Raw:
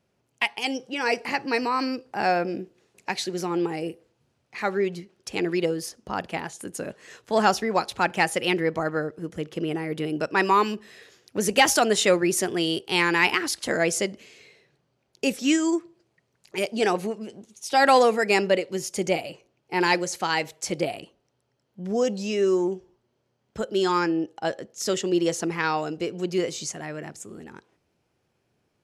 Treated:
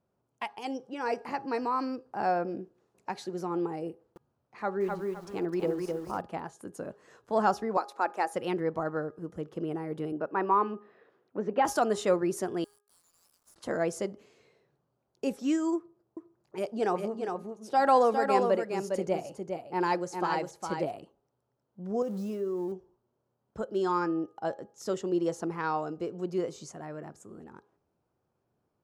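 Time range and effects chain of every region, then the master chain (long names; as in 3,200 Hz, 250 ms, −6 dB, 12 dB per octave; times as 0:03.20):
0:03.90–0:06.21: high-shelf EQ 5,400 Hz −4.5 dB + feedback echo at a low word length 257 ms, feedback 35%, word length 7 bits, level −3 dB
0:07.77–0:08.34: high-pass filter 320 Hz 24 dB per octave + parametric band 3,100 Hz −10 dB 0.22 octaves
0:10.12–0:11.65: band-pass filter 180–2,400 Hz + high-frequency loss of the air 99 metres
0:12.64–0:13.56: inverse Chebyshev high-pass filter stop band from 1,700 Hz, stop band 70 dB + downward compressor 2.5 to 1, threshold −49 dBFS + log-companded quantiser 4 bits
0:15.76–0:20.91: single-tap delay 407 ms −5.5 dB + one half of a high-frequency compander decoder only
0:22.02–0:22.72: spike at every zero crossing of −23 dBFS + spectral tilt −2 dB per octave + downward compressor 4 to 1, threshold −25 dBFS
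whole clip: high shelf with overshoot 1,600 Hz −9 dB, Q 1.5; hum removal 411.1 Hz, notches 4; level −6 dB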